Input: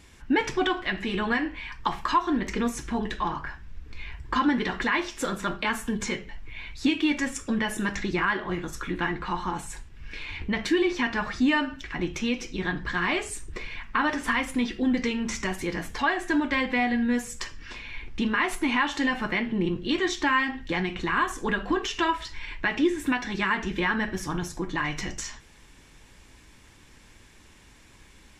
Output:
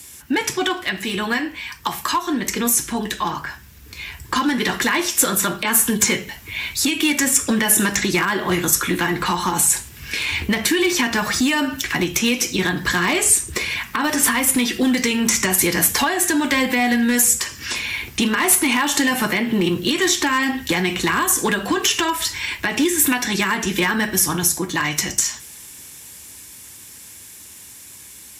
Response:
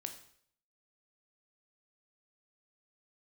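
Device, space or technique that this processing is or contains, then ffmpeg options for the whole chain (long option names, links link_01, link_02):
FM broadcast chain: -filter_complex "[0:a]highpass=frequency=69:width=0.5412,highpass=frequency=69:width=1.3066,dynaudnorm=framelen=340:gausssize=31:maxgain=10dB,acrossover=split=250|880|3200|6600[link_01][link_02][link_03][link_04][link_05];[link_01]acompressor=threshold=-26dB:ratio=4[link_06];[link_02]acompressor=threshold=-22dB:ratio=4[link_07];[link_03]acompressor=threshold=-24dB:ratio=4[link_08];[link_04]acompressor=threshold=-41dB:ratio=4[link_09];[link_05]acompressor=threshold=-42dB:ratio=4[link_10];[link_06][link_07][link_08][link_09][link_10]amix=inputs=5:normalize=0,aemphasis=mode=production:type=50fm,alimiter=limit=-13dB:level=0:latency=1:release=182,asoftclip=type=hard:threshold=-16dB,lowpass=frequency=15000:width=0.5412,lowpass=frequency=15000:width=1.3066,aemphasis=mode=production:type=50fm,volume=4dB"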